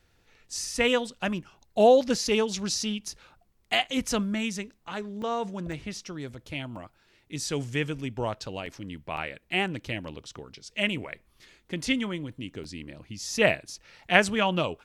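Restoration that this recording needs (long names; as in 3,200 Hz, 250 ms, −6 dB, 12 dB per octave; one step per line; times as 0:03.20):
repair the gap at 0:05.22/0:05.72/0:06.76/0:08.66/0:09.17/0:12.32/0:12.64, 2.9 ms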